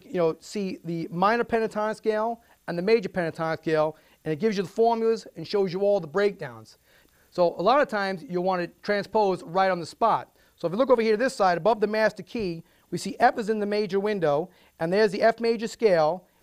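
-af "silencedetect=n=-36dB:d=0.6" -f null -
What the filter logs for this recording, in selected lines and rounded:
silence_start: 6.60
silence_end: 7.36 | silence_duration: 0.76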